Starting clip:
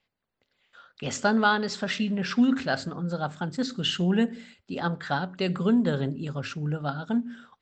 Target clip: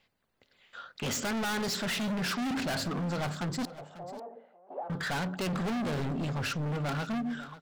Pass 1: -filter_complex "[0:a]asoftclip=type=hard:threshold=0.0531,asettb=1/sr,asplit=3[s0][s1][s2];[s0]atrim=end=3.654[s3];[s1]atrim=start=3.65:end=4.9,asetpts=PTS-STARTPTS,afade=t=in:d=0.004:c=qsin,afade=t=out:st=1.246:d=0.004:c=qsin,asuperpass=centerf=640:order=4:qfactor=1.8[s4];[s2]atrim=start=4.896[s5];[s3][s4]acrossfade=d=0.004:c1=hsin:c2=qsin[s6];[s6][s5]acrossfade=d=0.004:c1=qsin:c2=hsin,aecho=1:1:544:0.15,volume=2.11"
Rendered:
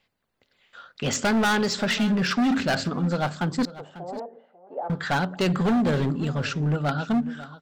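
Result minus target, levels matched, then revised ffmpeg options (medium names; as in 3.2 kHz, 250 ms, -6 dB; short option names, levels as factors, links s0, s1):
hard clipper: distortion -5 dB
-filter_complex "[0:a]asoftclip=type=hard:threshold=0.0141,asettb=1/sr,asplit=3[s0][s1][s2];[s0]atrim=end=3.654[s3];[s1]atrim=start=3.65:end=4.9,asetpts=PTS-STARTPTS,afade=t=in:d=0.004:c=qsin,afade=t=out:st=1.246:d=0.004:c=qsin,asuperpass=centerf=640:order=4:qfactor=1.8[s4];[s2]atrim=start=4.896[s5];[s3][s4]acrossfade=d=0.004:c1=hsin:c2=qsin[s6];[s6][s5]acrossfade=d=0.004:c1=qsin:c2=hsin,aecho=1:1:544:0.15,volume=2.11"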